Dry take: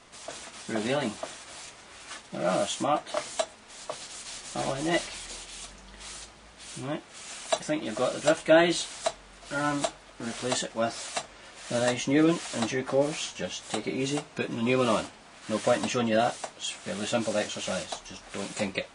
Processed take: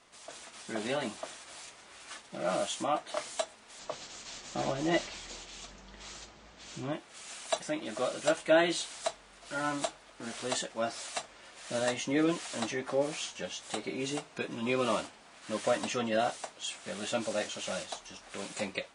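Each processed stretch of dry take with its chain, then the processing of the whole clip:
0:03.79–0:06.93: Butterworth low-pass 7,700 Hz 48 dB per octave + low-shelf EQ 470 Hz +7 dB
whole clip: low-shelf EQ 200 Hz −7 dB; automatic gain control gain up to 3 dB; level −7 dB

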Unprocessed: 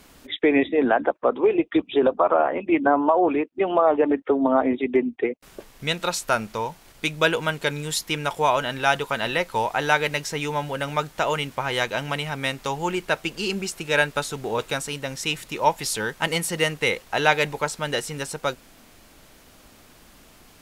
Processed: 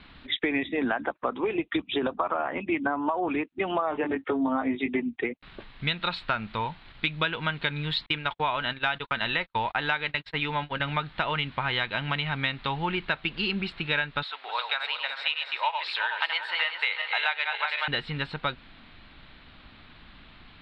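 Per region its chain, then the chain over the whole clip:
0:03.90–0:05.00: high-pass filter 54 Hz + double-tracking delay 19 ms −5 dB
0:08.06–0:10.80: noise gate −31 dBFS, range −43 dB + parametric band 150 Hz −3.5 dB 0.73 octaves
0:14.23–0:17.88: feedback delay that plays each chunk backwards 186 ms, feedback 63%, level −6.5 dB + high-pass filter 660 Hz 24 dB per octave
whole clip: elliptic low-pass filter 4,000 Hz, stop band 40 dB; parametric band 490 Hz −11 dB 1.5 octaves; downward compressor, threshold −28 dBFS; level +4.5 dB

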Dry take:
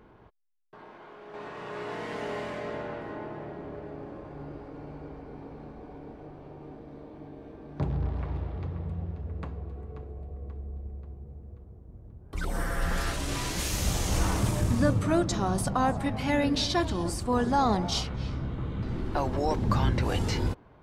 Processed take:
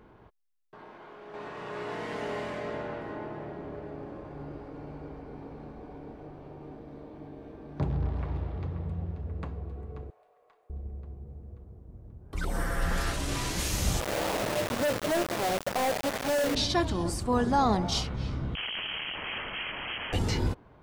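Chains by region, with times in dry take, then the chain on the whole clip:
0:10.10–0:10.70: Bessel high-pass filter 900 Hz, order 6 + tube saturation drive 49 dB, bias 0.4 + double-tracking delay 34 ms −10.5 dB
0:14.00–0:16.55: resonant band-pass 570 Hz, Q 2.6 + log-companded quantiser 2 bits
0:18.55–0:20.13: wrap-around overflow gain 30 dB + voice inversion scrambler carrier 3,200 Hz
whole clip: no processing

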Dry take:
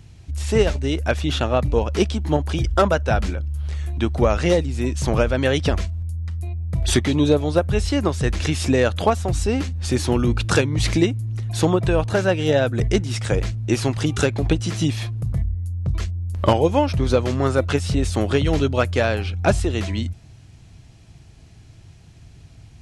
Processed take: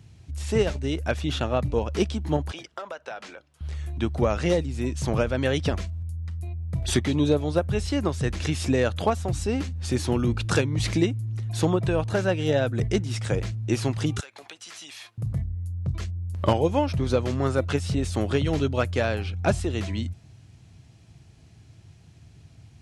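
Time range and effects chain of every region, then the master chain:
0:02.51–0:03.61: high-pass filter 590 Hz + downward compressor 10 to 1, threshold −25 dBFS + high-frequency loss of the air 53 metres
0:14.20–0:15.18: high-pass filter 1,000 Hz + downward compressor 16 to 1, threshold −32 dBFS
whole clip: high-pass filter 89 Hz; low-shelf EQ 140 Hz +5.5 dB; level −5.5 dB

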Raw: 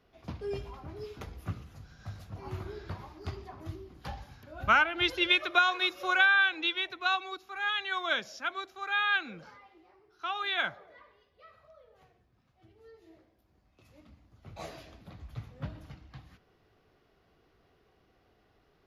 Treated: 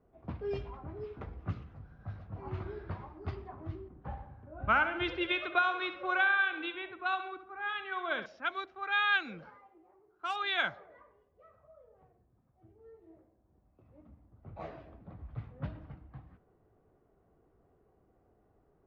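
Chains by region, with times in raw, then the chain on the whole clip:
0:03.88–0:08.26: head-to-tape spacing loss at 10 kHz 28 dB + repeating echo 69 ms, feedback 54%, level −11 dB
0:09.50–0:10.36: gap after every zero crossing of 0.068 ms + low-shelf EQ 150 Hz −8.5 dB
whole clip: low-pass that shuts in the quiet parts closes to 850 Hz, open at −26.5 dBFS; high-shelf EQ 8,700 Hz −10.5 dB

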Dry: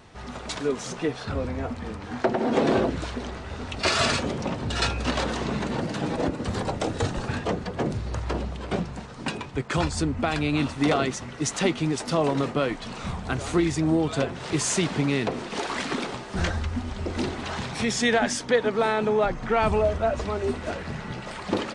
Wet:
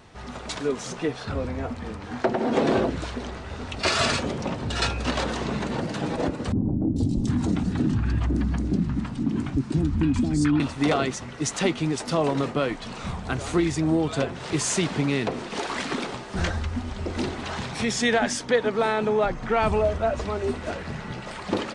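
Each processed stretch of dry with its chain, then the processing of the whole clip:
0:06.52–0:10.60: low shelf with overshoot 370 Hz +9 dB, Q 3 + downward compressor 3 to 1, threshold −20 dBFS + three-band delay without the direct sound lows, highs, mids 440/750 ms, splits 670/3,600 Hz
whole clip: no processing

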